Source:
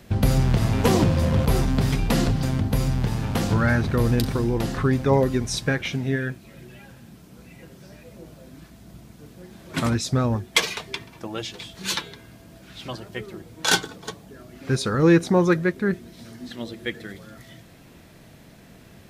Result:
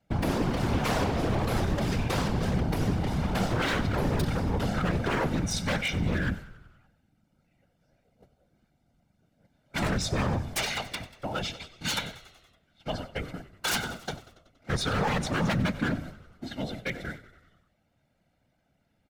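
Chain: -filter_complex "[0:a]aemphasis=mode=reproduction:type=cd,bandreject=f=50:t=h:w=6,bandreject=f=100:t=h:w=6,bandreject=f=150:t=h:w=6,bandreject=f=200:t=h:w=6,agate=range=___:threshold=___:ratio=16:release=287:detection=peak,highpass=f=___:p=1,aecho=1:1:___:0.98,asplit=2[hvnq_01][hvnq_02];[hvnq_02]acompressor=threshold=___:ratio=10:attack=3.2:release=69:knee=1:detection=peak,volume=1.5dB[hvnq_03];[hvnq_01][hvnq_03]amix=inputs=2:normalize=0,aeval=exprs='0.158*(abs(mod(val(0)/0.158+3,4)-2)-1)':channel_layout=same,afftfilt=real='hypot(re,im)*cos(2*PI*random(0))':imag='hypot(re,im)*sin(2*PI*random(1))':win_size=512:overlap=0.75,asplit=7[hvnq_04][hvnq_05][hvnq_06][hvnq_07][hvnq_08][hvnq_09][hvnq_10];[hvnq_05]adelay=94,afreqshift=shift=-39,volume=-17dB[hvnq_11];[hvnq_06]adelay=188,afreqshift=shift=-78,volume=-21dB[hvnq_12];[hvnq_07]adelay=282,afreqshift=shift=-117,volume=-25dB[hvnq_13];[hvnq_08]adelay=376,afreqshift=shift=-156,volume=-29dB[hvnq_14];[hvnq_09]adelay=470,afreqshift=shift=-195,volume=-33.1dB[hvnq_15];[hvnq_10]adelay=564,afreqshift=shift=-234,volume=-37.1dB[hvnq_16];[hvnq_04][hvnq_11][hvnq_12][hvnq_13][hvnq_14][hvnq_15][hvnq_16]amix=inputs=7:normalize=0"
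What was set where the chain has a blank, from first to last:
-26dB, -37dB, 54, 1.4, -29dB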